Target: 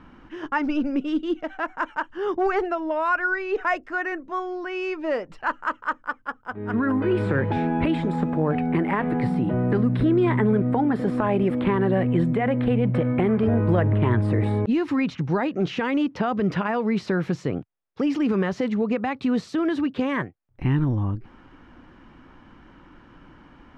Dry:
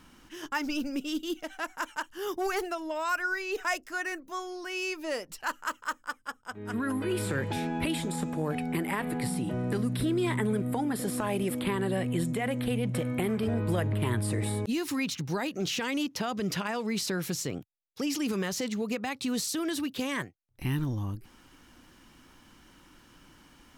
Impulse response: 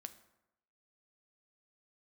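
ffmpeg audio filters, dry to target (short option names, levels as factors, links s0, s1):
-af "lowpass=1700,volume=2.66"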